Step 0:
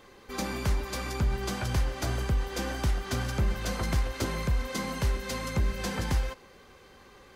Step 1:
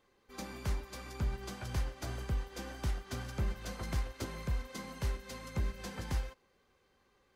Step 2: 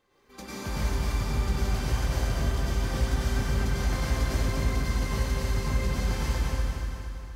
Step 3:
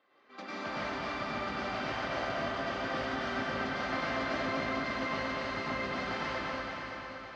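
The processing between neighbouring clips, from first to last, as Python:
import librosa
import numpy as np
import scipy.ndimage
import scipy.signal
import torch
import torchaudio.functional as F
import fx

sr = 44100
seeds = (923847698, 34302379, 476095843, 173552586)

y1 = fx.upward_expand(x, sr, threshold_db=-45.0, expansion=1.5)
y1 = F.gain(torch.from_numpy(y1), -6.5).numpy()
y2 = fx.echo_feedback(y1, sr, ms=235, feedback_pct=53, wet_db=-4.5)
y2 = fx.rev_plate(y2, sr, seeds[0], rt60_s=2.2, hf_ratio=0.8, predelay_ms=85, drr_db=-8.5)
y3 = fx.cabinet(y2, sr, low_hz=270.0, low_slope=12, high_hz=4500.0, hz=(280.0, 420.0, 650.0, 1300.0, 1900.0, 2800.0), db=(5, -4, 9, 8, 5, 3))
y3 = fx.echo_feedback(y3, sr, ms=564, feedback_pct=48, wet_db=-9.5)
y3 = F.gain(torch.from_numpy(y3), -2.5).numpy()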